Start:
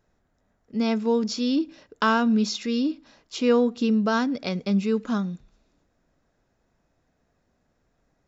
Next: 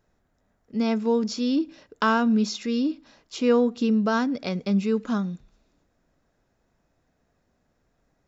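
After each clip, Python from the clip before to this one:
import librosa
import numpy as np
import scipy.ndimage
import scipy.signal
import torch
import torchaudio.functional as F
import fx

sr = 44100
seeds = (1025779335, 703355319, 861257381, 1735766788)

y = fx.dynamic_eq(x, sr, hz=3800.0, q=0.86, threshold_db=-40.0, ratio=4.0, max_db=-3)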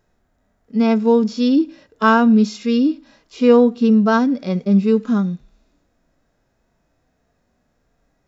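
y = fx.hpss(x, sr, part='percussive', gain_db=-17)
y = F.gain(torch.from_numpy(y), 8.5).numpy()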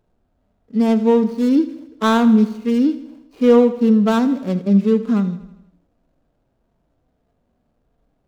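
y = scipy.ndimage.median_filter(x, 25, mode='constant')
y = fx.echo_feedback(y, sr, ms=80, feedback_pct=57, wet_db=-15.5)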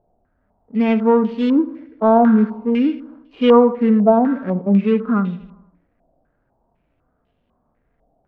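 y = fx.filter_held_lowpass(x, sr, hz=4.0, low_hz=720.0, high_hz=3000.0)
y = F.gain(torch.from_numpy(y), -1.0).numpy()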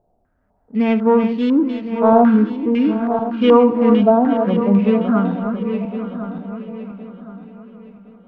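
y = fx.reverse_delay_fb(x, sr, ms=532, feedback_pct=56, wet_db=-7.5)
y = fx.echo_feedback(y, sr, ms=868, feedback_pct=39, wet_db=-16.0)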